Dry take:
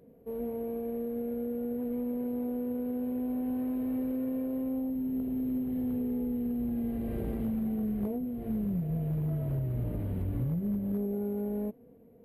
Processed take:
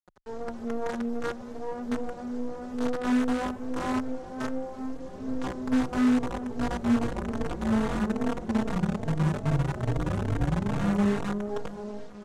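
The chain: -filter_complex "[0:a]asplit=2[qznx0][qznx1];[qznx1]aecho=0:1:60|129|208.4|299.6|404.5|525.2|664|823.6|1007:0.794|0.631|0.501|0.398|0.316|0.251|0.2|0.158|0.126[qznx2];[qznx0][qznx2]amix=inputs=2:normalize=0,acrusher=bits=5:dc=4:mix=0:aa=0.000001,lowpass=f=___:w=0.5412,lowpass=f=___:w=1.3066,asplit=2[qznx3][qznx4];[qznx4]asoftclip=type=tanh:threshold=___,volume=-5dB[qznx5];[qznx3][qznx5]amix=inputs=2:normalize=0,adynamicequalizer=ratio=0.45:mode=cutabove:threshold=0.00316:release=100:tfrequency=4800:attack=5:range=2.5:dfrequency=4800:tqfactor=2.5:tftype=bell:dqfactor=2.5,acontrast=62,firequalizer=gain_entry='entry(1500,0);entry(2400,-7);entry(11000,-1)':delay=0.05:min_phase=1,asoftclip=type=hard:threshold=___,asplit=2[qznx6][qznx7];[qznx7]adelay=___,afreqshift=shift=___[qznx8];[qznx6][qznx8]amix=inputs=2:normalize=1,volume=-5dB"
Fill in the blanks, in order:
7k, 7k, -26.5dB, -11.5dB, 3.8, 2.4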